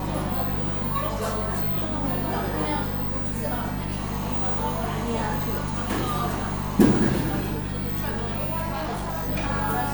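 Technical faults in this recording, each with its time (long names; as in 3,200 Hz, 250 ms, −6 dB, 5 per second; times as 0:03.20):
mains hum 50 Hz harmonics 4 −31 dBFS
0:08.72–0:09.29: clipping −25.5 dBFS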